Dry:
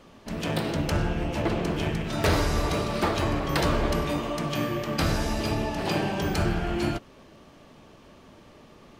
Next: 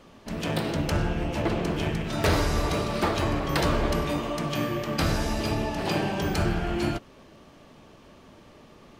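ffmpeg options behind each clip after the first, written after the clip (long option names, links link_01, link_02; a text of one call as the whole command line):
ffmpeg -i in.wav -af anull out.wav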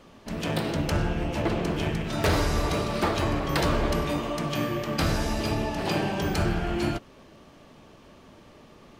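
ffmpeg -i in.wav -af "volume=16dB,asoftclip=hard,volume=-16dB" out.wav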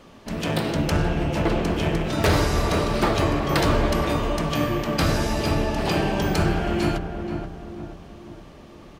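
ffmpeg -i in.wav -filter_complex "[0:a]asplit=2[link_01][link_02];[link_02]adelay=479,lowpass=frequency=1200:poles=1,volume=-6dB,asplit=2[link_03][link_04];[link_04]adelay=479,lowpass=frequency=1200:poles=1,volume=0.49,asplit=2[link_05][link_06];[link_06]adelay=479,lowpass=frequency=1200:poles=1,volume=0.49,asplit=2[link_07][link_08];[link_08]adelay=479,lowpass=frequency=1200:poles=1,volume=0.49,asplit=2[link_09][link_10];[link_10]adelay=479,lowpass=frequency=1200:poles=1,volume=0.49,asplit=2[link_11][link_12];[link_12]adelay=479,lowpass=frequency=1200:poles=1,volume=0.49[link_13];[link_01][link_03][link_05][link_07][link_09][link_11][link_13]amix=inputs=7:normalize=0,volume=3.5dB" out.wav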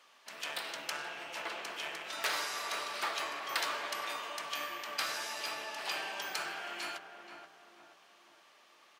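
ffmpeg -i in.wav -af "highpass=1200,volume=-7dB" out.wav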